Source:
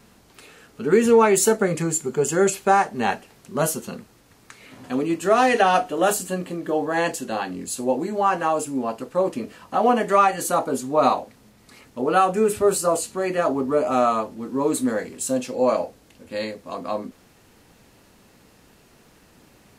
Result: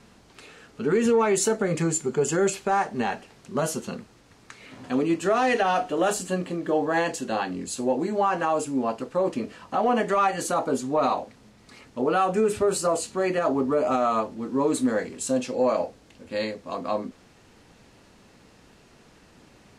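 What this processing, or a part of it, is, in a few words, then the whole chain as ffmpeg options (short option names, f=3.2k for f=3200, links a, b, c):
soft clipper into limiter: -af "lowpass=7.6k,asoftclip=type=tanh:threshold=-5dB,alimiter=limit=-14dB:level=0:latency=1:release=96"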